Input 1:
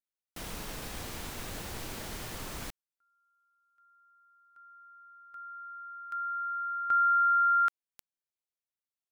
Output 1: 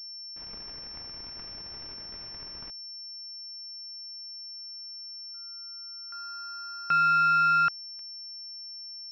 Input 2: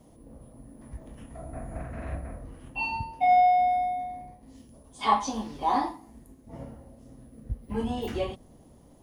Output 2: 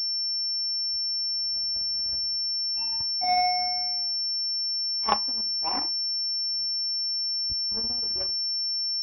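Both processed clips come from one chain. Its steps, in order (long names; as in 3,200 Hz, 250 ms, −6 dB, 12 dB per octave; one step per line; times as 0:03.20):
power curve on the samples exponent 2
switching amplifier with a slow clock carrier 5,400 Hz
level +4 dB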